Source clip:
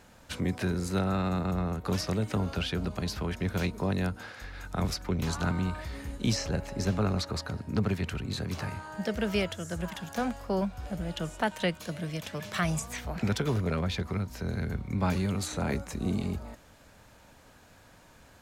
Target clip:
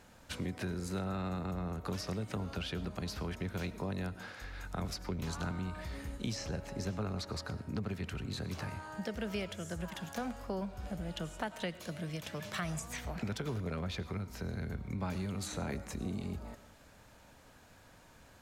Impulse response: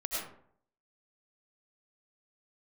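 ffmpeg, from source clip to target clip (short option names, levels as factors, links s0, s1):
-filter_complex "[0:a]acompressor=threshold=0.0224:ratio=2.5,asplit=2[s0][s1];[1:a]atrim=start_sample=2205[s2];[s1][s2]afir=irnorm=-1:irlink=0,volume=0.126[s3];[s0][s3]amix=inputs=2:normalize=0,volume=0.631"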